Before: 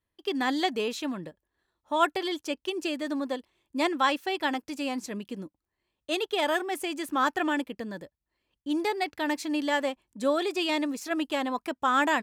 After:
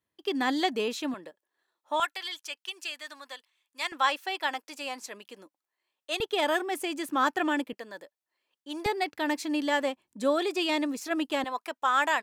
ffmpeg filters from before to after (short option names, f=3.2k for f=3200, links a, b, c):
-af "asetnsamples=n=441:p=0,asendcmd='1.14 highpass f 450;2 highpass f 1400;3.92 highpass f 620;6.2 highpass f 150;7.73 highpass f 530;8.86 highpass f 150;11.44 highpass f 580',highpass=120"